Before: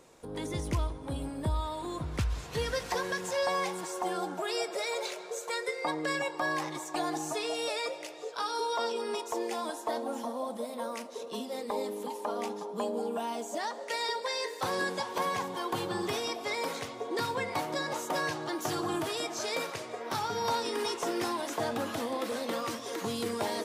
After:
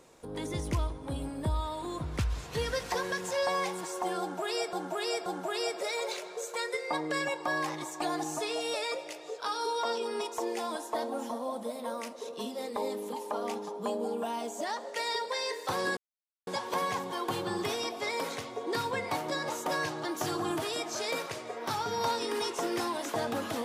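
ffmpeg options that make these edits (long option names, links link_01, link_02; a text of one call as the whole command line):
ffmpeg -i in.wav -filter_complex "[0:a]asplit=4[link_01][link_02][link_03][link_04];[link_01]atrim=end=4.732[link_05];[link_02]atrim=start=4.198:end=4.732[link_06];[link_03]atrim=start=4.198:end=14.91,asetpts=PTS-STARTPTS,afade=type=out:start_time=10.708:duration=0.004:curve=hsin,apad=pad_dur=0.5[link_07];[link_04]atrim=start=14.91,asetpts=PTS-STARTPTS,afade=type=in:duration=0.004:curve=hsin[link_08];[link_05][link_06]acrossfade=duration=0.004:curve1=hsin:curve2=hsin[link_09];[link_07][link_08]concat=n=2:v=0:a=1[link_10];[link_09][link_10]acrossfade=duration=0.004:curve1=hsin:curve2=hsin" out.wav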